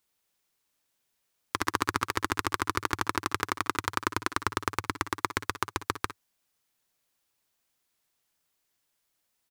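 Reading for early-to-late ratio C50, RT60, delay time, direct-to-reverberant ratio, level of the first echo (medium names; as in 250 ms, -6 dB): no reverb, no reverb, 55 ms, no reverb, -15.5 dB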